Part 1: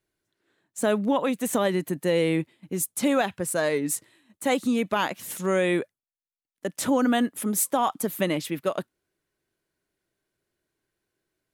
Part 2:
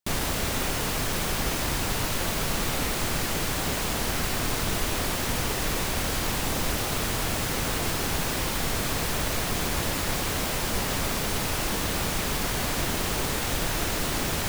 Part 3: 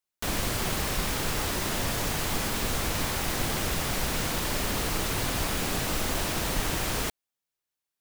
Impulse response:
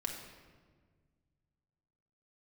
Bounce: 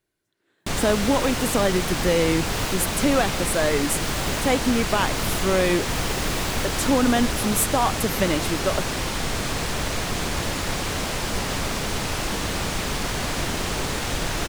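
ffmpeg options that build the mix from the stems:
-filter_complex "[0:a]volume=2dB,asplit=2[link_01][link_02];[1:a]acrossover=split=9700[link_03][link_04];[link_04]acompressor=threshold=-46dB:ratio=4:attack=1:release=60[link_05];[link_03][link_05]amix=inputs=2:normalize=0,adelay=600,volume=2dB[link_06];[2:a]adelay=550,volume=-3dB[link_07];[link_02]apad=whole_len=377123[link_08];[link_07][link_08]sidechaincompress=threshold=-28dB:ratio=8:attack=16:release=229[link_09];[link_01][link_06][link_09]amix=inputs=3:normalize=0"

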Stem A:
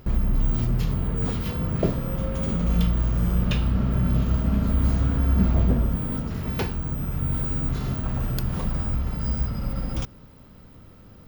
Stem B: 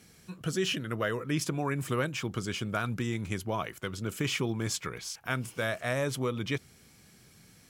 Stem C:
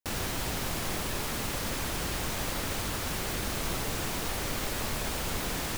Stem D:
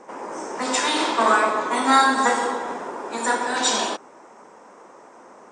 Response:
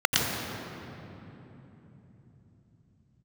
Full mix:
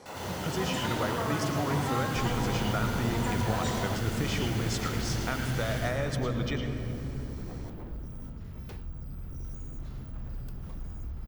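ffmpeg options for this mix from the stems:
-filter_complex "[0:a]aeval=exprs='0.0794*(abs(mod(val(0)/0.0794+3,4)-2)-1)':channel_layout=same,lowshelf=frequency=100:gain=11.5,adelay=2100,volume=-17.5dB[link_01];[1:a]lowpass=8100,acompressor=threshold=-32dB:ratio=6,volume=2dB,asplit=2[link_02][link_03];[link_03]volume=-20dB[link_04];[2:a]highshelf=frequency=6800:gain=7,volume=-18.5dB,asplit=2[link_05][link_06];[link_06]volume=-4.5dB[link_07];[3:a]equalizer=frequency=580:width_type=o:width=2.4:gain=9,acompressor=threshold=-17dB:ratio=6,volume=-15dB[link_08];[4:a]atrim=start_sample=2205[link_09];[link_04][link_07]amix=inputs=2:normalize=0[link_10];[link_10][link_09]afir=irnorm=-1:irlink=0[link_11];[link_01][link_02][link_05][link_08][link_11]amix=inputs=5:normalize=0"

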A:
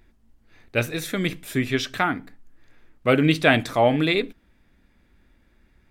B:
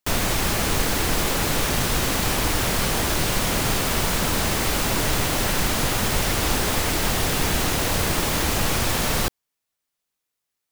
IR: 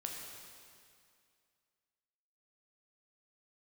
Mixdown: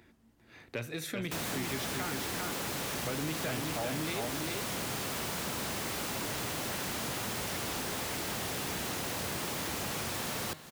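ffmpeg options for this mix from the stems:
-filter_complex "[0:a]acrossover=split=140[link_01][link_02];[link_02]acompressor=threshold=-25dB:ratio=2.5[link_03];[link_01][link_03]amix=inputs=2:normalize=0,volume=2.5dB,asplit=2[link_04][link_05];[link_05]volume=-4.5dB[link_06];[1:a]bandreject=frequency=154.8:width_type=h:width=4,bandreject=frequency=309.6:width_type=h:width=4,bandreject=frequency=464.4:width_type=h:width=4,bandreject=frequency=619.2:width_type=h:width=4,bandreject=frequency=774:width_type=h:width=4,bandreject=frequency=928.8:width_type=h:width=4,bandreject=frequency=1083.6:width_type=h:width=4,bandreject=frequency=1238.4:width_type=h:width=4,bandreject=frequency=1393.2:width_type=h:width=4,bandreject=frequency=1548:width_type=h:width=4,bandreject=frequency=1702.8:width_type=h:width=4,bandreject=frequency=1857.6:width_type=h:width=4,bandreject=frequency=2012.4:width_type=h:width=4,bandreject=frequency=2167.2:width_type=h:width=4,bandreject=frequency=2322:width_type=h:width=4,bandreject=frequency=2476.8:width_type=h:width=4,bandreject=frequency=2631.6:width_type=h:width=4,bandreject=frequency=2786.4:width_type=h:width=4,bandreject=frequency=2941.2:width_type=h:width=4,bandreject=frequency=3096:width_type=h:width=4,bandreject=frequency=3250.8:width_type=h:width=4,bandreject=frequency=3405.6:width_type=h:width=4,bandreject=frequency=3560.4:width_type=h:width=4,bandreject=frequency=3715.2:width_type=h:width=4,bandreject=frequency=3870:width_type=h:width=4,bandreject=frequency=4024.8:width_type=h:width=4,bandreject=frequency=4179.6:width_type=h:width=4,bandreject=frequency=4334.4:width_type=h:width=4,bandreject=frequency=4489.2:width_type=h:width=4,bandreject=frequency=4644:width_type=h:width=4,bandreject=frequency=4798.8:width_type=h:width=4,adelay=1250,volume=-0.5dB,asplit=2[link_07][link_08];[link_08]volume=-19.5dB[link_09];[link_06][link_09]amix=inputs=2:normalize=0,aecho=0:1:398:1[link_10];[link_04][link_07][link_10]amix=inputs=3:normalize=0,highpass=110,asoftclip=type=tanh:threshold=-15.5dB,acompressor=threshold=-43dB:ratio=2"

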